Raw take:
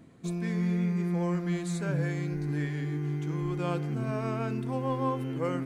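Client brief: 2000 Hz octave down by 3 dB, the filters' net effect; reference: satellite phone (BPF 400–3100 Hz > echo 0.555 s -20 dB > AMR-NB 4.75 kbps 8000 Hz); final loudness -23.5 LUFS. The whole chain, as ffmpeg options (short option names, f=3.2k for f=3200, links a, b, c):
-af "highpass=400,lowpass=3.1k,equalizer=f=2k:t=o:g=-3,aecho=1:1:555:0.1,volume=15.5dB" -ar 8000 -c:a libopencore_amrnb -b:a 4750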